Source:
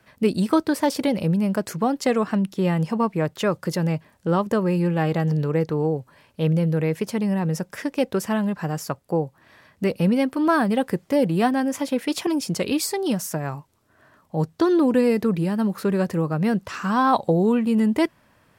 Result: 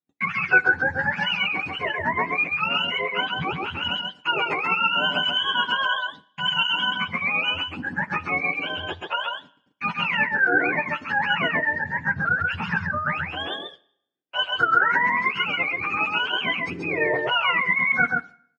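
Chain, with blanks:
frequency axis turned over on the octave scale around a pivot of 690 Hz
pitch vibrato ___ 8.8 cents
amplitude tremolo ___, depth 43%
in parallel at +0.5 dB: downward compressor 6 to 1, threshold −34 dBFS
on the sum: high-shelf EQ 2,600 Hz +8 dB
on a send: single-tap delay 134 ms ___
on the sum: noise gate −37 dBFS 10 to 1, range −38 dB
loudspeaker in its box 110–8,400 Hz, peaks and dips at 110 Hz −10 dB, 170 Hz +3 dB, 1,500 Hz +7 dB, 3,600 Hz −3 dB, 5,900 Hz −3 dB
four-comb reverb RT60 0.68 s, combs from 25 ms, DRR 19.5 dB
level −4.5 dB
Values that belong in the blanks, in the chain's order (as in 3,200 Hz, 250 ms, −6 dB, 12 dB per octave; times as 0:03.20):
0.88 Hz, 9.1 Hz, −3 dB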